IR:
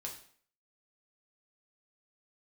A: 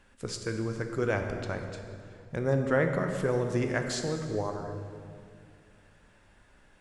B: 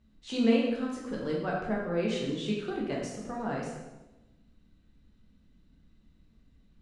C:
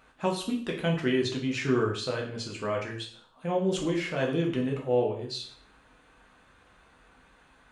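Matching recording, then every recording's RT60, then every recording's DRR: C; 2.3, 1.1, 0.55 s; 4.5, -4.0, -1.0 dB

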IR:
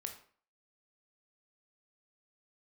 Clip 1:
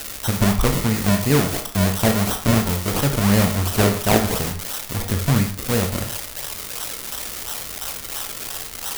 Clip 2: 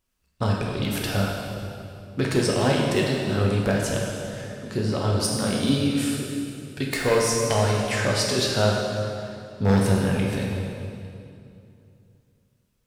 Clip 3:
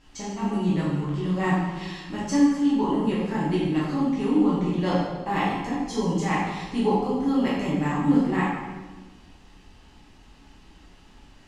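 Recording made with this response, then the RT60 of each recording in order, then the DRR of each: 1; 0.50, 2.6, 1.3 s; 4.0, -2.5, -8.0 dB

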